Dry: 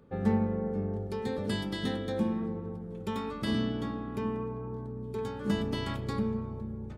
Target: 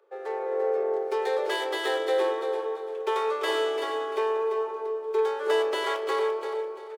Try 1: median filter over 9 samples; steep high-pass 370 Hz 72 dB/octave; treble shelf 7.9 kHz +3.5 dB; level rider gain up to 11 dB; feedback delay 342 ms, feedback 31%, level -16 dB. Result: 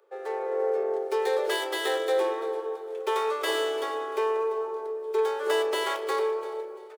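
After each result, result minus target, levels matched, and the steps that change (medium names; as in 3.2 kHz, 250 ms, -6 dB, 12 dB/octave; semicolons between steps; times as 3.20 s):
echo-to-direct -8 dB; 8 kHz band +5.0 dB
change: feedback delay 342 ms, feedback 31%, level -8 dB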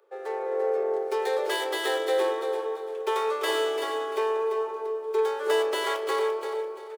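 8 kHz band +5.0 dB
change: treble shelf 7.9 kHz -7 dB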